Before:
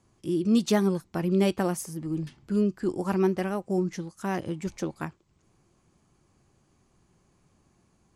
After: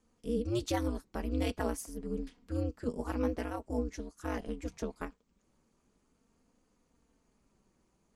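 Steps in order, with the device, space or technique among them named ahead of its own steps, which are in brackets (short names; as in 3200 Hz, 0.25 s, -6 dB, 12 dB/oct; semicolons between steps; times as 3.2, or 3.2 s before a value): alien voice (ring modulator 120 Hz; flange 0.45 Hz, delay 3.9 ms, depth 1.5 ms, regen -40%)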